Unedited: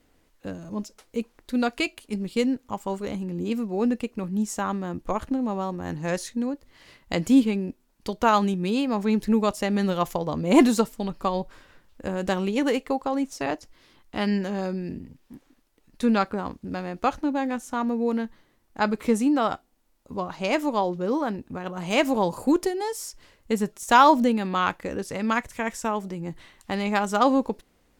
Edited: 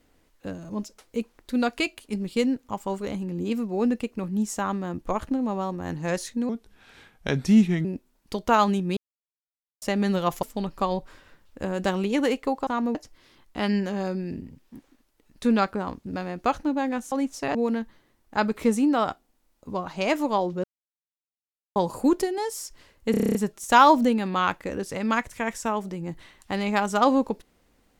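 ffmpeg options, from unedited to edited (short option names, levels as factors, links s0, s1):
-filter_complex "[0:a]asplit=20[s0][s1][s2][s3][s4][s5][s6][s7][s8][s9][s10][s11][s12][s13][s14][s15][s16][s17][s18][s19];[s0]atrim=end=6.494[s20];[s1]atrim=start=6.49:end=7.59,asetpts=PTS-STARTPTS,asetrate=35721,aresample=44100[s21];[s2]atrim=start=7.586:end=8.71,asetpts=PTS-STARTPTS,afade=t=out:st=1.12:d=0.004:c=hsin[s22];[s3]atrim=start=8.71:end=9.56,asetpts=PTS-STARTPTS,volume=0[s23];[s4]atrim=start=9.56:end=10.172,asetpts=PTS-STARTPTS,afade=t=in:d=0.004:c=hsin[s24];[s5]atrim=start=10.858:end=13.102[s25];[s6]atrim=start=17.698:end=17.982[s26];[s7]atrim=start=13.528:end=17.702[s27];[s8]atrim=start=13.098:end=13.532[s28];[s9]atrim=start=17.978:end=21.07,asetpts=PTS-STARTPTS,afade=t=out:st=3.088:d=0.004:c=hsin[s29];[s10]atrim=start=21.07:end=22.19,asetpts=PTS-STARTPTS,volume=0[s30];[s11]atrim=start=22.19:end=23.572,asetpts=PTS-STARTPTS,afade=t=in:d=0.004:c=hsin[s31];[s12]atrim=start=23.538:end=23.572[s32];[s13]atrim=start=23.538:end=23.572[s33];[s14]atrim=start=23.538:end=23.572[s34];[s15]atrim=start=23.538:end=23.572[s35];[s16]atrim=start=23.538:end=23.572[s36];[s17]atrim=start=23.538:end=23.572[s37];[s18]atrim=start=23.538:end=23.572[s38];[s19]atrim=start=23.538[s39];[s20][s21]acrossfade=d=0.004:c1=hsin:c2=hsin[s40];[s22][s23][s24]concat=n=3:v=0:a=1[s41];[s40][s41]acrossfade=d=0.004:c1=hsin:c2=hsin[s42];[s42][s25]acrossfade=d=0.004:c1=hsin:c2=hsin[s43];[s43][s26]acrossfade=d=0.004:c1=hsin:c2=hsin[s44];[s44][s27]acrossfade=d=0.004:c1=hsin:c2=hsin[s45];[s45][s28]acrossfade=d=0.004:c1=hsin:c2=hsin[s46];[s29][s30][s31]concat=n=3:v=0:a=1[s47];[s46][s47]acrossfade=d=0.004:c1=hsin:c2=hsin[s48];[s48][s32]acrossfade=d=0.004:c1=hsin:c2=hsin[s49];[s49][s33]acrossfade=d=0.004:c1=hsin:c2=hsin[s50];[s50][s34]acrossfade=d=0.004:c1=hsin:c2=hsin[s51];[s51][s35]acrossfade=d=0.004:c1=hsin:c2=hsin[s52];[s52][s36]acrossfade=d=0.004:c1=hsin:c2=hsin[s53];[s53][s37]acrossfade=d=0.004:c1=hsin:c2=hsin[s54];[s54][s38]acrossfade=d=0.004:c1=hsin:c2=hsin[s55];[s55][s39]acrossfade=d=0.004:c1=hsin:c2=hsin"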